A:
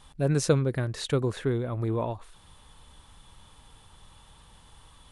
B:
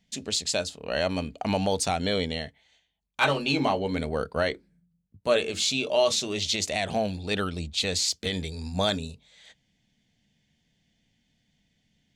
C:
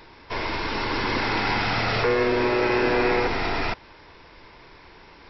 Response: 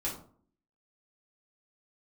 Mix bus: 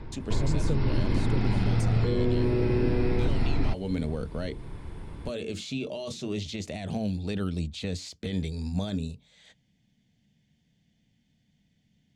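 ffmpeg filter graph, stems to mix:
-filter_complex "[0:a]adelay=200,volume=0.501[s0];[1:a]alimiter=limit=0.112:level=0:latency=1:release=16,volume=0.631[s1];[2:a]aemphasis=mode=reproduction:type=riaa,volume=0.596[s2];[s0][s1][s2]amix=inputs=3:normalize=0,equalizer=f=140:t=o:w=2.7:g=8.5,acrossover=split=440|2900[s3][s4][s5];[s3]acompressor=threshold=0.0794:ratio=4[s6];[s4]acompressor=threshold=0.00891:ratio=4[s7];[s5]acompressor=threshold=0.00631:ratio=4[s8];[s6][s7][s8]amix=inputs=3:normalize=0"

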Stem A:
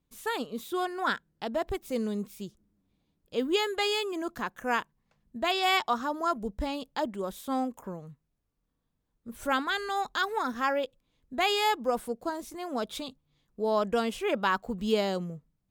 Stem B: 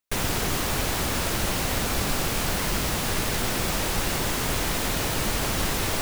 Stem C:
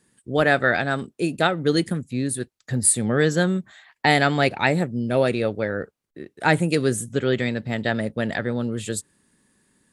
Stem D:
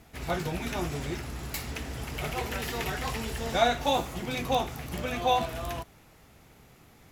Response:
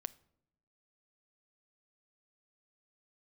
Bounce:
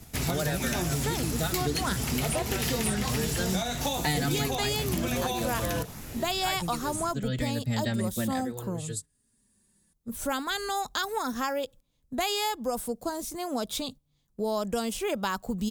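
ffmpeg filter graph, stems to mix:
-filter_complex "[0:a]equalizer=f=700:t=o:w=1.3:g=4,adelay=800,volume=0.944,asplit=2[s0][s1];[s1]volume=0.0841[s2];[1:a]lowpass=2200,alimiter=level_in=1.12:limit=0.0631:level=0:latency=1,volume=0.891,asplit=2[s3][s4];[s4]afreqshift=2.8[s5];[s3][s5]amix=inputs=2:normalize=1,adelay=1100,volume=0.237[s6];[2:a]tremolo=f=0.51:d=0.68,asplit=2[s7][s8];[s8]adelay=4.3,afreqshift=-0.67[s9];[s7][s9]amix=inputs=2:normalize=1,volume=0.841[s10];[3:a]acompressor=threshold=0.0282:ratio=6,volume=1.41,asplit=2[s11][s12];[s12]volume=0.708[s13];[4:a]atrim=start_sample=2205[s14];[s2][s13]amix=inputs=2:normalize=0[s15];[s15][s14]afir=irnorm=-1:irlink=0[s16];[s0][s6][s10][s11][s16]amix=inputs=5:normalize=0,agate=range=0.398:threshold=0.00447:ratio=16:detection=peak,bass=f=250:g=9,treble=f=4000:g=13,acrossover=split=99|5400[s17][s18][s19];[s17]acompressor=threshold=0.00794:ratio=4[s20];[s18]acompressor=threshold=0.0447:ratio=4[s21];[s19]acompressor=threshold=0.0158:ratio=4[s22];[s20][s21][s22]amix=inputs=3:normalize=0"

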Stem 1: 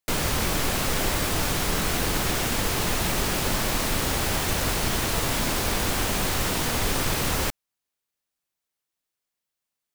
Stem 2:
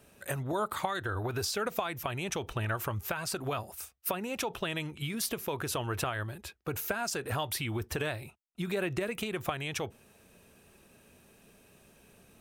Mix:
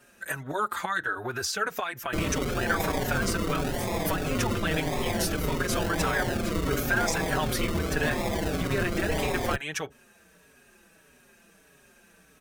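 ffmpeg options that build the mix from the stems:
-filter_complex "[0:a]tiltshelf=f=970:g=-5,acrusher=samples=42:mix=1:aa=0.000001:lfo=1:lforange=25.2:lforate=0.93,adelay=2050,volume=0.794[s0];[1:a]equalizer=f=100:t=o:w=0.67:g=-10,equalizer=f=1600:t=o:w=0.67:g=10,equalizer=f=6300:t=o:w=0.67:g=5,volume=1.41[s1];[s0][s1]amix=inputs=2:normalize=0,asplit=2[s2][s3];[s3]adelay=5.1,afreqshift=-1.6[s4];[s2][s4]amix=inputs=2:normalize=1"

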